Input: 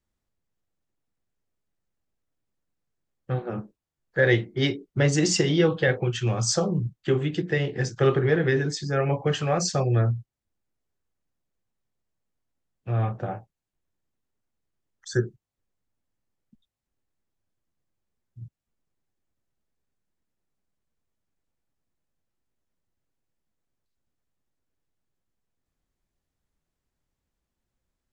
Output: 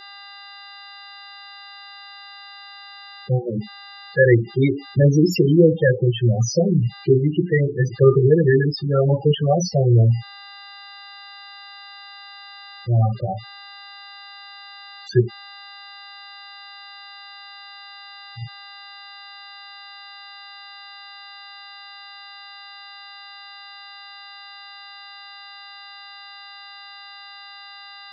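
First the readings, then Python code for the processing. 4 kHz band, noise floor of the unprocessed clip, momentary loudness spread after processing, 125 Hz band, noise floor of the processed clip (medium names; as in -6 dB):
+2.5 dB, -85 dBFS, 19 LU, +7.5 dB, -41 dBFS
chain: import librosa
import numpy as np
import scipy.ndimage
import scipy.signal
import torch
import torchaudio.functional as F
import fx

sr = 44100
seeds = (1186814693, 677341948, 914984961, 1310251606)

y = fx.self_delay(x, sr, depth_ms=0.087)
y = fx.dmg_buzz(y, sr, base_hz=400.0, harmonics=13, level_db=-43.0, tilt_db=0, odd_only=False)
y = fx.spec_topn(y, sr, count=8)
y = F.gain(torch.from_numpy(y), 8.0).numpy()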